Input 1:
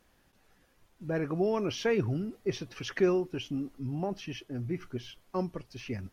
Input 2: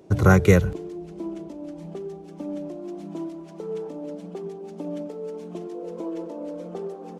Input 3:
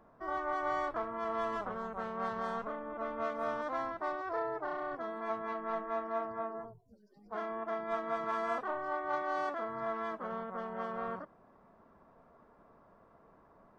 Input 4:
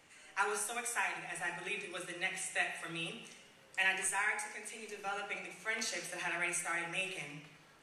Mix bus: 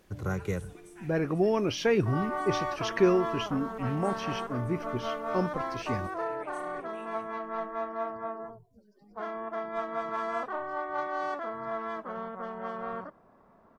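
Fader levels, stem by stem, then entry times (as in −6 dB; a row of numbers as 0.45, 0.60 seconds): +3.0, −16.5, +2.0, −19.5 decibels; 0.00, 0.00, 1.85, 0.00 seconds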